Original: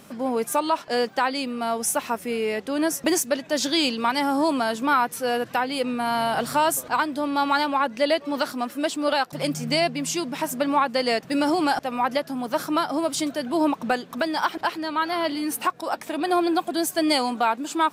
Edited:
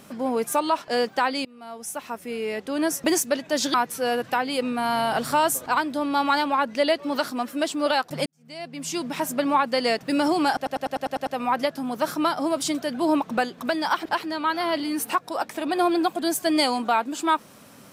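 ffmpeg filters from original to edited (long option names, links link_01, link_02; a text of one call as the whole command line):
ffmpeg -i in.wav -filter_complex "[0:a]asplit=11[link_01][link_02][link_03][link_04][link_05][link_06][link_07][link_08][link_09][link_10][link_11];[link_01]atrim=end=1.45,asetpts=PTS-STARTPTS,afade=type=out:start_time=1.446:duration=0.004:curve=hsin:silence=0.0749894[link_12];[link_02]atrim=start=1.45:end=3.742,asetpts=PTS-STARTPTS,afade=type=in:duration=1.52:silence=0.0749894[link_13];[link_03]atrim=start=4.958:end=9.48,asetpts=PTS-STARTPTS,afade=type=out:start_time=4.518:duration=0.004:curve=hsin[link_14];[link_04]atrim=start=9.48:end=11.882,asetpts=PTS-STARTPTS,afade=type=in:duration=0.78:curve=qua[link_15];[link_05]atrim=start=11.778:end=11.882[link_16];[link_06]atrim=start=11.778:end=11.882[link_17];[link_07]atrim=start=11.778:end=11.882[link_18];[link_08]atrim=start=11.778:end=11.882[link_19];[link_09]atrim=start=11.778:end=11.882[link_20];[link_10]atrim=start=11.778:end=11.882[link_21];[link_11]atrim=start=11.778[link_22];[link_12][link_13]concat=n=2:v=0:a=1[link_23];[link_14][link_15]concat=n=2:v=0:a=1[link_24];[link_23][link_24]acrossfade=duration=0.004:curve1=hsin:curve2=hsin[link_25];[link_25][link_16]acrossfade=duration=0.004:curve1=hsin:curve2=hsin[link_26];[link_26][link_17]acrossfade=duration=0.004:curve1=hsin:curve2=hsin[link_27];[link_27][link_18]acrossfade=duration=0.004:curve1=hsin:curve2=hsin[link_28];[link_28][link_19]acrossfade=duration=0.004:curve1=hsin:curve2=hsin[link_29];[link_29][link_20]acrossfade=duration=0.004:curve1=hsin:curve2=hsin[link_30];[link_30][link_21]acrossfade=duration=0.004:curve1=hsin:curve2=hsin[link_31];[link_31][link_22]acrossfade=duration=0.004:curve1=hsin:curve2=hsin" out.wav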